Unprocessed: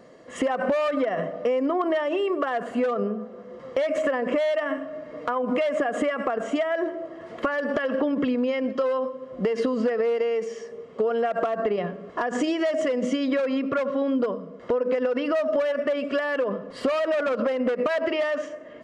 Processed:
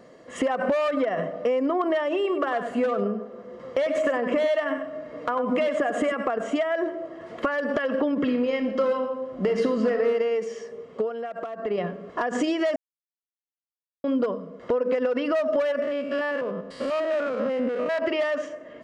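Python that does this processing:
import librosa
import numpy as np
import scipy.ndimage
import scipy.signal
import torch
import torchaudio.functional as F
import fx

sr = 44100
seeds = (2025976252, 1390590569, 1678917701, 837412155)

y = fx.echo_single(x, sr, ms=99, db=-10.5, at=(2.23, 6.14), fade=0.02)
y = fx.reverb_throw(y, sr, start_s=8.19, length_s=1.88, rt60_s=1.0, drr_db=5.5)
y = fx.spec_steps(y, sr, hold_ms=100, at=(15.82, 18.02))
y = fx.edit(y, sr, fx.fade_down_up(start_s=10.97, length_s=0.79, db=-8.5, fade_s=0.15),
    fx.silence(start_s=12.76, length_s=1.28), tone=tone)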